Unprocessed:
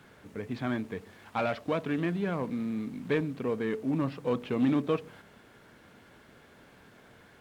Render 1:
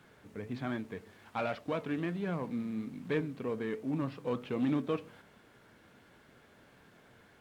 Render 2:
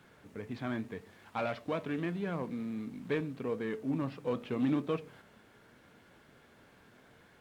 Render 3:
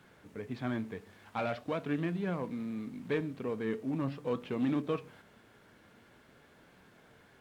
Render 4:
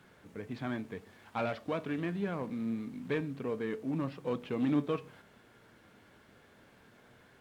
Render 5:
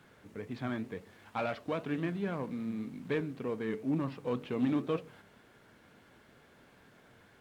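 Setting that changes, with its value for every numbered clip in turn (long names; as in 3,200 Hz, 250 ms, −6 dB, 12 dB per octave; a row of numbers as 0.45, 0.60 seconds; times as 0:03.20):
flanger, speed: 1.3, 0.82, 0.44, 0.24, 2 Hertz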